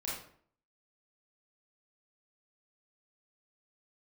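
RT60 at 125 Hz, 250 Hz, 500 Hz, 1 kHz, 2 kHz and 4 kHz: 0.60, 0.60, 0.60, 0.55, 0.50, 0.40 seconds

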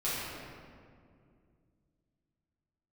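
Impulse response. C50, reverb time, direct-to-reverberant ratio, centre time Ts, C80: −3.5 dB, 2.3 s, −12.0 dB, 148 ms, −1.0 dB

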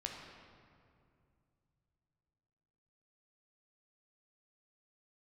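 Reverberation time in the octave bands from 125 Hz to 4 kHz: 4.0, 3.1, 2.6, 2.3, 1.9, 1.4 seconds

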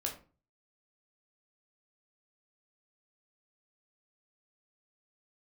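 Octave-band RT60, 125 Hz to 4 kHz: 0.60, 0.45, 0.40, 0.35, 0.30, 0.25 seconds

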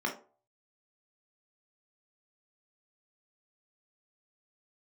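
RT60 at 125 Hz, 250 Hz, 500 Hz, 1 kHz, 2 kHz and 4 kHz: 0.45, 0.35, 0.45, 0.40, 0.25, 0.20 seconds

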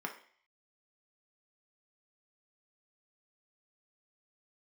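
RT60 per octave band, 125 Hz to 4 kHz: 0.35, 0.45, 0.50, 0.50, 0.60, 0.55 seconds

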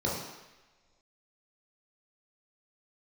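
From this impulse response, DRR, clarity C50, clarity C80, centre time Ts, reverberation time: −5.5 dB, 2.0 dB, 5.0 dB, 59 ms, non-exponential decay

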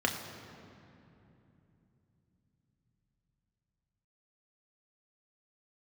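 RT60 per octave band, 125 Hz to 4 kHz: 6.2, 4.9, 3.2, 2.7, 2.4, 1.7 seconds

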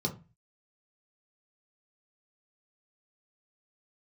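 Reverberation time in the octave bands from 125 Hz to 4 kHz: 0.50, 0.40, 0.30, 0.30, 0.30, 0.20 seconds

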